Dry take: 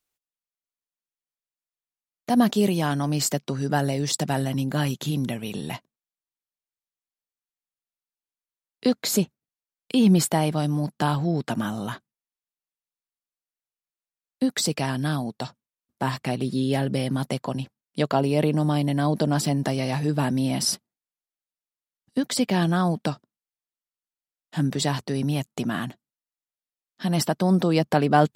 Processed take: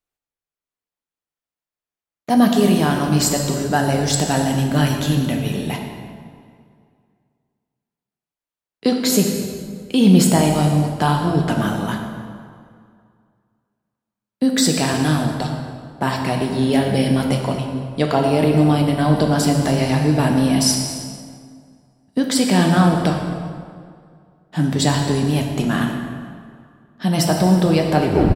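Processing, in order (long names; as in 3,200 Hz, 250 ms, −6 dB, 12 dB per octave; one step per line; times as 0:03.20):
turntable brake at the end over 0.32 s
automatic gain control gain up to 6.5 dB
on a send: echo with shifted repeats 115 ms, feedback 54%, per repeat −41 Hz, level −20 dB
on the sum: dense smooth reverb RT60 2.2 s, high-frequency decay 0.8×, DRR 1.5 dB
one half of a high-frequency compander decoder only
level −1 dB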